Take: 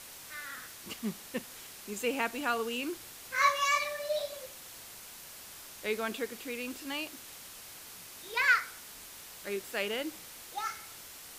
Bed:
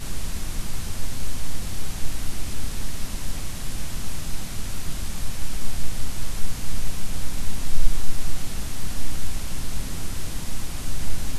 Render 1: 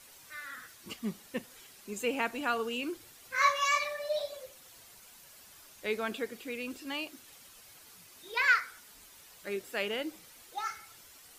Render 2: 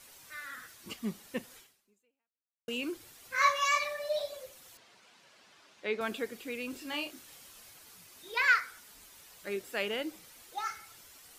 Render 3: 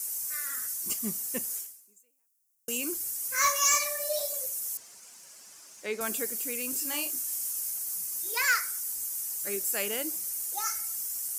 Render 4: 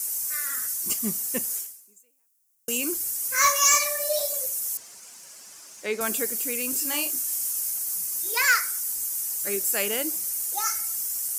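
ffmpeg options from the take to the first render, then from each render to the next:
-af "afftdn=nr=9:nf=-49"
-filter_complex "[0:a]asettb=1/sr,asplit=3[a][b][c];[a]atrim=end=4.774[d];[b]atrim=start=4.77:end=6.01,asetpts=PTS-STARTPTS,afade=t=in:d=0.004:c=qsin,afade=t=out:st=1.236:d=0.004:c=qsin,highpass=180,lowpass=4.1k[e];[c]atrim=start=6.006[f];[d][e]acrossfade=d=0.004:c1=hsin:c2=qsin[g];[g][f]acrossfade=d=0.004:c1=qsin:c2=hsin,asettb=1/sr,asplit=3[h][i][j];[h]atrim=end=6.704[k];[i]atrim=start=6.7:end=7.7,asetpts=PTS-STARTPTS,afade=t=in:d=0.004:c=qsin,afade=t=out:st=0.996:d=0.004:c=qsin,asplit=2[l][m];[m]adelay=27,volume=-5.5dB[n];[l][n]amix=inputs=2:normalize=0,atrim=end_sample=44100[o];[j]atrim=start=7.696[p];[k][o]acrossfade=d=0.004:c1=hsin:c2=qsin[q];[q][p]acrossfade=d=0.004:c1=qsin:c2=hsin,asplit=2[r][s];[r]atrim=end=2.68,asetpts=PTS-STARTPTS,afade=t=out:st=1.57:d=1.11:c=exp[t];[s]atrim=start=2.68,asetpts=PTS-STARTPTS,afade=t=in:d=0.004:c=hsin[u];[t][u]concat=n=2:v=0:a=1"
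-af "aexciter=amount=9.1:drive=6.9:freq=5.5k,asoftclip=type=tanh:threshold=-15dB"
-af "volume=5dB"

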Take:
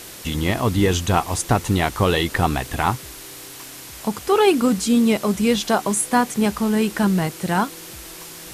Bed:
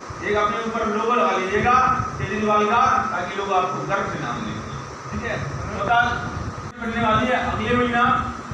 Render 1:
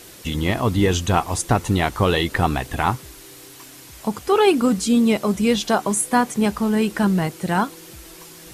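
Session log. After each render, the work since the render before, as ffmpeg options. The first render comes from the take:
-af "afftdn=nr=6:nf=-38"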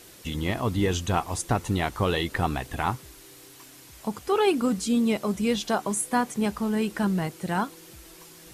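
-af "volume=-6.5dB"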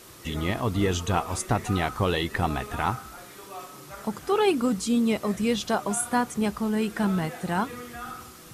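-filter_complex "[1:a]volume=-20.5dB[a];[0:a][a]amix=inputs=2:normalize=0"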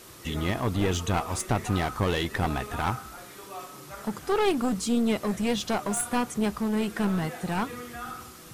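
-af "aeval=exprs='clip(val(0),-1,0.0501)':c=same"

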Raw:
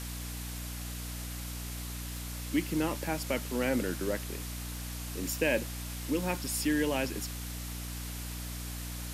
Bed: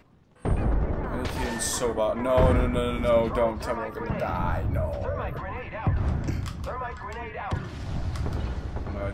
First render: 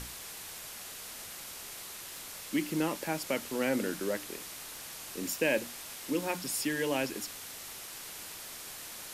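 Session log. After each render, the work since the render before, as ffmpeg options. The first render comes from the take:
-af "bandreject=f=60:t=h:w=6,bandreject=f=120:t=h:w=6,bandreject=f=180:t=h:w=6,bandreject=f=240:t=h:w=6,bandreject=f=300:t=h:w=6"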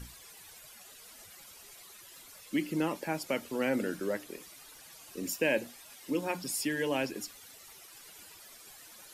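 -af "afftdn=nr=13:nf=-45"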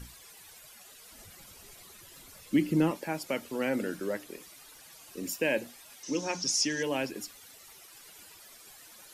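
-filter_complex "[0:a]asettb=1/sr,asplit=3[a][b][c];[a]atrim=end=1.124[d];[b]atrim=start=1.12:end=2.91,asetpts=PTS-STARTPTS,afade=t=in:d=0.004:c=qsin,afade=t=out:st=1.786:d=0.004:c=qsin,lowshelf=f=310:g=11.5[e];[c]atrim=start=2.906[f];[d][e]acrossfade=d=0.004:c1=hsin:c2=qsin[g];[g][f]acrossfade=d=0.004:c1=qsin:c2=hsin,asettb=1/sr,asplit=3[h][i][j];[h]atrim=end=6.034[k];[i]atrim=start=6.03:end=6.83,asetpts=PTS-STARTPTS,afade=t=in:d=0.004:c=qsin,afade=t=out:st=0.796:d=0.004:c=qsin,lowpass=f=6k:t=q:w=12[l];[j]atrim=start=6.826[m];[k][l]acrossfade=d=0.004:c1=hsin:c2=qsin[n];[n][m]acrossfade=d=0.004:c1=qsin:c2=hsin"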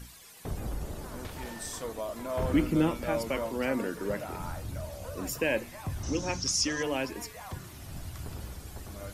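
-filter_complex "[1:a]volume=-11dB[a];[0:a][a]amix=inputs=2:normalize=0"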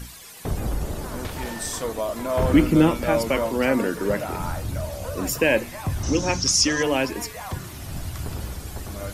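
-af "volume=9dB"

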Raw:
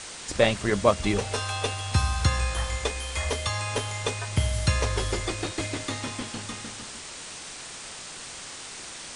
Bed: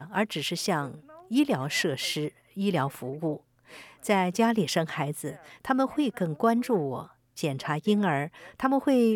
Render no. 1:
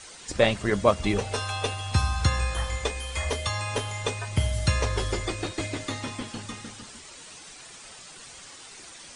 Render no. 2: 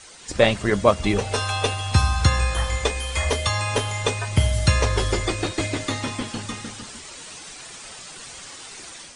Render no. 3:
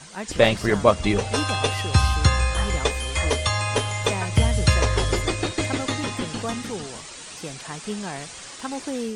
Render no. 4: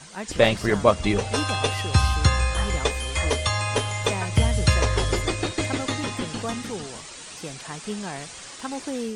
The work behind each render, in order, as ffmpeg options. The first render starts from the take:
-af "afftdn=nr=9:nf=-40"
-af "dynaudnorm=f=200:g=3:m=6dB"
-filter_complex "[1:a]volume=-7dB[a];[0:a][a]amix=inputs=2:normalize=0"
-af "volume=-1dB"

